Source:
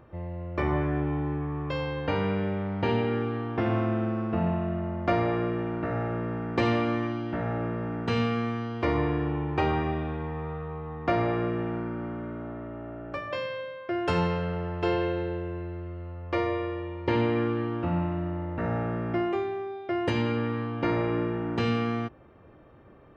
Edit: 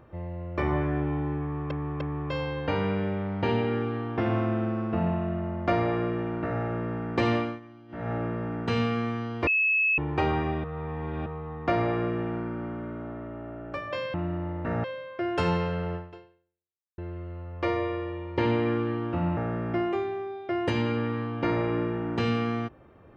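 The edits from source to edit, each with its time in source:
0:01.41–0:01.71: repeat, 3 plays
0:06.76–0:07.52: duck −18 dB, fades 0.24 s
0:08.87–0:09.38: beep over 2,590 Hz −20.5 dBFS
0:10.04–0:10.66: reverse
0:14.65–0:15.68: fade out exponential
0:18.07–0:18.77: move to 0:13.54

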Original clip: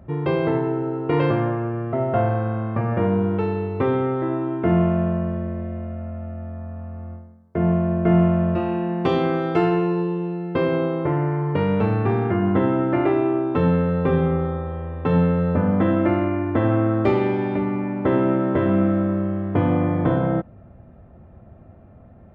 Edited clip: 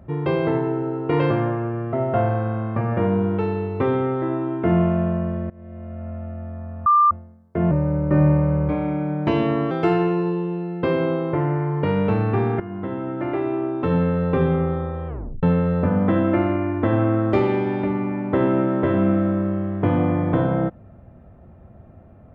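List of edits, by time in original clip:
0:05.50–0:06.11: fade in, from −22.5 dB
0:06.86–0:07.11: beep over 1,190 Hz −11.5 dBFS
0:07.71–0:09.43: play speed 86%
0:12.32–0:13.96: fade in, from −13.5 dB
0:14.80: tape stop 0.35 s

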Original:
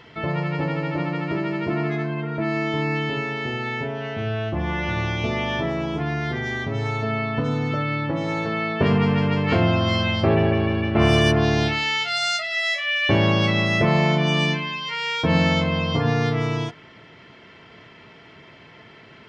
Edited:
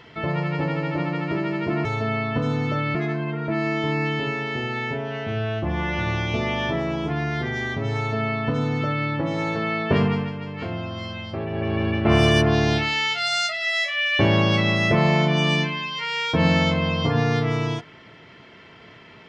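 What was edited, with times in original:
0:06.87–0:07.97: duplicate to 0:01.85
0:08.86–0:10.77: duck −11 dB, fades 0.37 s

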